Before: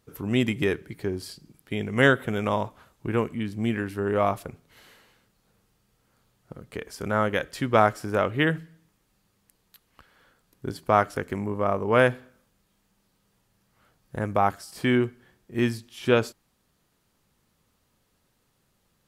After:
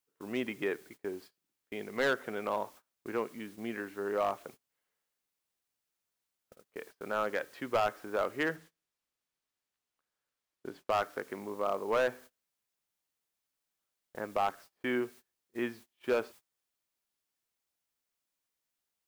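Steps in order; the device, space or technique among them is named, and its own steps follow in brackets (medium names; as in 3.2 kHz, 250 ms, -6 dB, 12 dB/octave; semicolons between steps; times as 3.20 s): aircraft radio (band-pass 340–2400 Hz; hard clipper -16.5 dBFS, distortion -10 dB; white noise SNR 23 dB; gate -44 dBFS, range -26 dB); 8.56–10.90 s: treble shelf 8.7 kHz -9 dB; trim -6 dB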